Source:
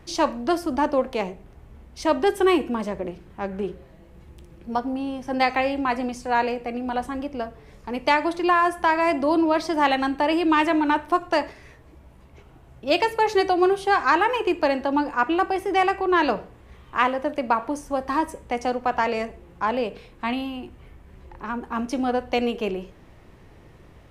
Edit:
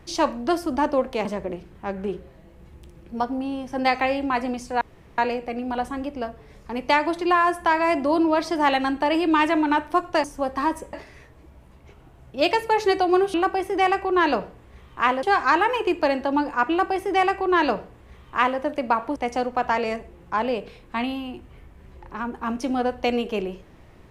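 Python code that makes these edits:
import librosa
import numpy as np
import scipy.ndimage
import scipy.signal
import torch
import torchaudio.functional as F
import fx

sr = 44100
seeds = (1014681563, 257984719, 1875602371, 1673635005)

y = fx.edit(x, sr, fx.cut(start_s=1.25, length_s=1.55),
    fx.insert_room_tone(at_s=6.36, length_s=0.37),
    fx.duplicate(start_s=15.3, length_s=1.89, to_s=13.83),
    fx.move(start_s=17.76, length_s=0.69, to_s=11.42), tone=tone)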